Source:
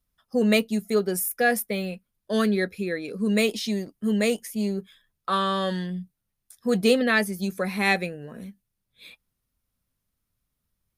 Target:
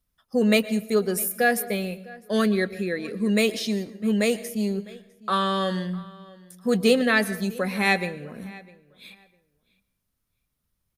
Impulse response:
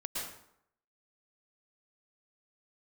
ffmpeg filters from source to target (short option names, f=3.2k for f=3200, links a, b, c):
-filter_complex "[0:a]asplit=2[a][b];[b]adelay=654,lowpass=f=3.8k:p=1,volume=-21.5dB,asplit=2[c][d];[d]adelay=654,lowpass=f=3.8k:p=1,volume=0.2[e];[a][c][e]amix=inputs=3:normalize=0,asplit=2[f][g];[1:a]atrim=start_sample=2205[h];[g][h]afir=irnorm=-1:irlink=0,volume=-17dB[i];[f][i]amix=inputs=2:normalize=0"